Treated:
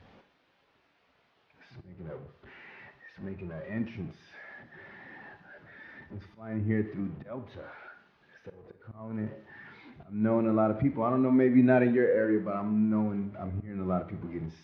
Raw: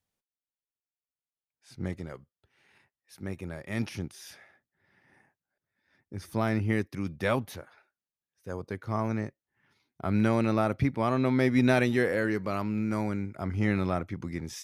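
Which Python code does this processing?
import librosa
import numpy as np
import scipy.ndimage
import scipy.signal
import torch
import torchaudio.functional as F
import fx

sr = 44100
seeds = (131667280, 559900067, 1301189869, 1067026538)

y = x + 0.5 * 10.0 ** (-31.5 / 20.0) * np.sign(x)
y = scipy.signal.sosfilt(scipy.signal.butter(2, 40.0, 'highpass', fs=sr, output='sos'), y)
y = fx.peak_eq(y, sr, hz=87.0, db=-6.0, octaves=2.4)
y = fx.auto_swell(y, sr, attack_ms=270.0)
y = fx.air_absorb(y, sr, metres=270.0)
y = fx.rev_schroeder(y, sr, rt60_s=0.73, comb_ms=38, drr_db=7.5)
y = fx.spectral_expand(y, sr, expansion=1.5)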